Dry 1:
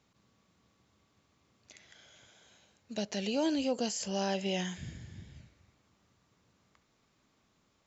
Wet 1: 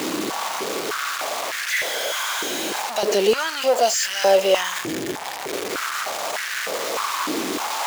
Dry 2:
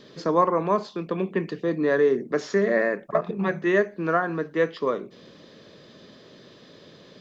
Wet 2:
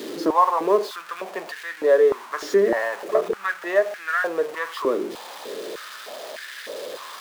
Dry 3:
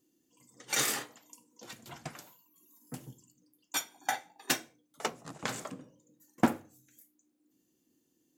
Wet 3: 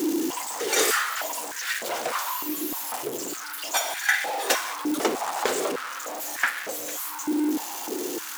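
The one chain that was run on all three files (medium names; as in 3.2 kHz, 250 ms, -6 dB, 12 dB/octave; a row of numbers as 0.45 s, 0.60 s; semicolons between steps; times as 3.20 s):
jump at every zero crossing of -30 dBFS; step-sequenced high-pass 3.3 Hz 320–1700 Hz; peak normalisation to -6 dBFS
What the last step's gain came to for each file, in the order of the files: +8.5 dB, -3.5 dB, +3.5 dB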